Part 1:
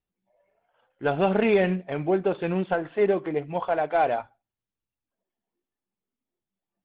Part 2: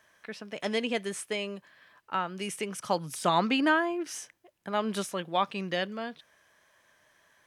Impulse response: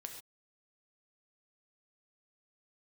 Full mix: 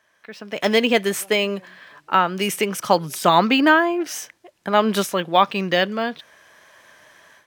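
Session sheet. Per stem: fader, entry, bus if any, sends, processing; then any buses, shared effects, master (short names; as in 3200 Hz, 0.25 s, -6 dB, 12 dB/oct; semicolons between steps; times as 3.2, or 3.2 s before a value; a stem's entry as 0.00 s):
-16.5 dB, 0.00 s, no send, auto duck -14 dB, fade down 2.00 s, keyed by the second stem
0.0 dB, 0.00 s, no send, AGC gain up to 15 dB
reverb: off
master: low shelf 110 Hz -7.5 dB; decimation joined by straight lines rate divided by 2×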